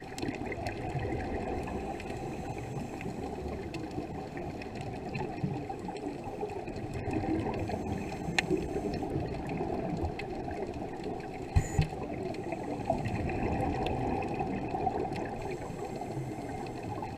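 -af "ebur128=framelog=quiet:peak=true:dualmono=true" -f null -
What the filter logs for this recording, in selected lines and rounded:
Integrated loudness:
  I:         -32.7 LUFS
  Threshold: -42.7 LUFS
Loudness range:
  LRA:         4.6 LU
  Threshold: -52.5 LUFS
  LRA low:   -35.4 LUFS
  LRA high:  -30.8 LUFS
True peak:
  Peak:       -7.8 dBFS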